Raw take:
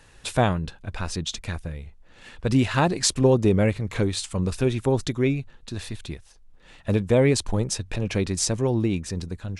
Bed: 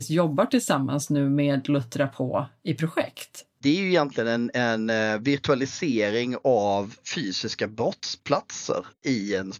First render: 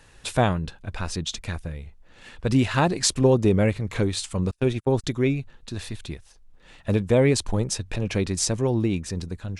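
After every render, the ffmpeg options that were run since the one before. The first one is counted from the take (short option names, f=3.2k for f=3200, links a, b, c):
-filter_complex "[0:a]asettb=1/sr,asplit=3[a][b][c];[a]atrim=end=4.514[d];[b]atrim=start=4.51:end=5.04,asetpts=PTS-STARTPTS,afade=t=in:d=0.004:c=qsin,afade=t=out:st=0.526:d=0.004:c=qsin,agate=range=-37dB:threshold=-27dB:ratio=16:release=100:detection=peak[e];[c]atrim=start=5.036[f];[d][e]acrossfade=d=0.004:c1=hsin:c2=qsin[g];[g][f]acrossfade=d=0.004:c1=qsin:c2=hsin"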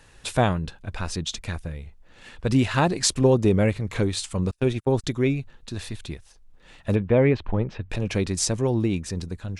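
-filter_complex "[0:a]asettb=1/sr,asplit=3[a][b][c];[a]atrim=end=6.954[d];[b]atrim=start=6.95:end=7.9,asetpts=PTS-STARTPTS,afade=t=in:d=0.004:c=qsin,afade=t=out:st=0.946:d=0.004:c=qsin,lowpass=f=2.8k:w=0.5412,lowpass=f=2.8k:w=1.3066[e];[c]atrim=start=7.896[f];[d][e]acrossfade=d=0.004:c1=hsin:c2=qsin[g];[g][f]acrossfade=d=0.004:c1=qsin:c2=hsin"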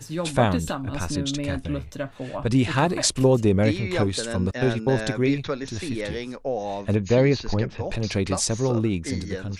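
-filter_complex "[1:a]volume=-6.5dB[a];[0:a][a]amix=inputs=2:normalize=0"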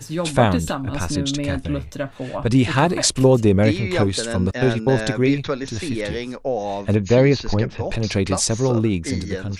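-af "volume=4dB,alimiter=limit=-2dB:level=0:latency=1"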